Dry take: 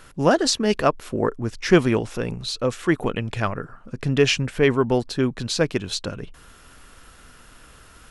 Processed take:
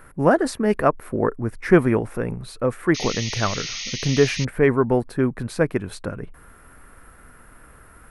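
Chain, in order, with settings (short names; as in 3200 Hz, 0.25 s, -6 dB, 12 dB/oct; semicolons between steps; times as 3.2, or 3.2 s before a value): band shelf 4500 Hz -15.5 dB; painted sound noise, 2.94–4.45, 1800–6700 Hz -32 dBFS; gain +1 dB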